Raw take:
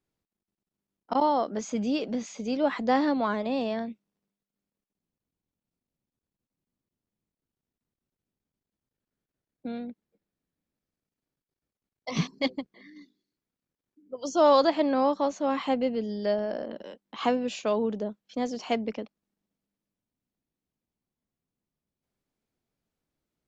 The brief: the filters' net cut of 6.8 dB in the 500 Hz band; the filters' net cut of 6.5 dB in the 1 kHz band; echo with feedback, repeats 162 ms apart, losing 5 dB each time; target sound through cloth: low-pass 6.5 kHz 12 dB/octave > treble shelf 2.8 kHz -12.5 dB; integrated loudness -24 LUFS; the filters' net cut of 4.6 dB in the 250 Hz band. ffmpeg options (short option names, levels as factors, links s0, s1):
-af "lowpass=6500,equalizer=f=250:t=o:g=-3.5,equalizer=f=500:t=o:g=-5.5,equalizer=f=1000:t=o:g=-4.5,highshelf=f=2800:g=-12.5,aecho=1:1:162|324|486|648|810|972|1134:0.562|0.315|0.176|0.0988|0.0553|0.031|0.0173,volume=2.66"